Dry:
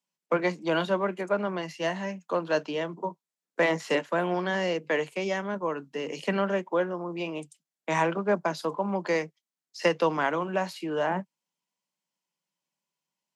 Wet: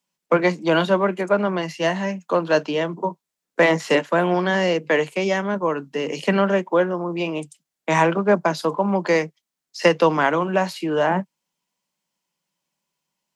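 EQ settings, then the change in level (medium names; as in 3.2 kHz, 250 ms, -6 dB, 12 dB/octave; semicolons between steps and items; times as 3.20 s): bass shelf 150 Hz +4 dB; +7.5 dB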